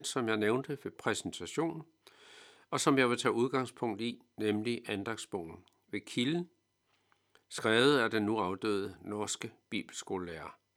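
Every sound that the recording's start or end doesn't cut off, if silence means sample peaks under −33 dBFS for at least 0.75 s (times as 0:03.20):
0:02.73–0:06.42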